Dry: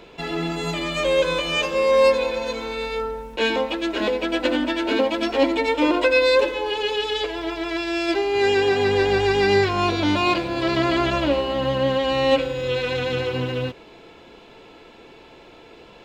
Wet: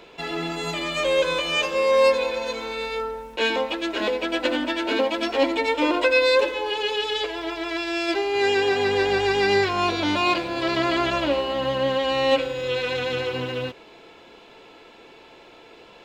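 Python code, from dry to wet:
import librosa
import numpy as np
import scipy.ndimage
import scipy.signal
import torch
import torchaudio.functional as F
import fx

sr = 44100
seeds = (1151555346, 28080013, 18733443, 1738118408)

y = fx.low_shelf(x, sr, hz=260.0, db=-8.5)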